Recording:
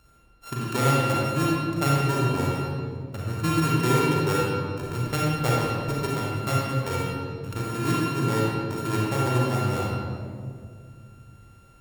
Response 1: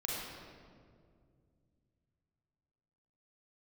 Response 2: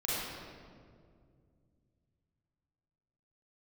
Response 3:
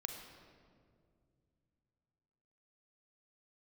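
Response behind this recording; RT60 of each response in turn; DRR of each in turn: 1; 2.2 s, 2.2 s, 2.2 s; -5.0 dB, -9.0 dB, 4.0 dB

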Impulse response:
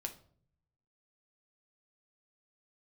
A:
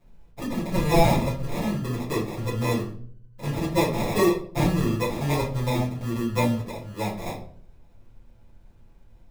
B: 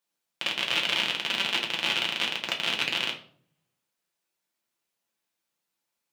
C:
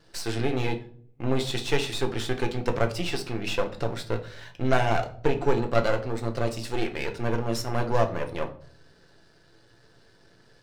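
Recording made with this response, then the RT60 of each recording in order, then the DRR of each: C; 0.55 s, 0.55 s, 0.55 s; -8.5 dB, -0.5 dB, 4.0 dB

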